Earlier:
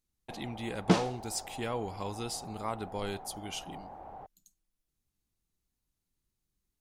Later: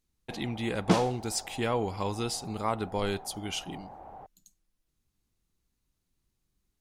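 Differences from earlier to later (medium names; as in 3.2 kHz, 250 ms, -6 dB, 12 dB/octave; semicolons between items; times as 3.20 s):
speech +6.0 dB; second sound: remove distance through air 57 m; master: add treble shelf 7.7 kHz -5.5 dB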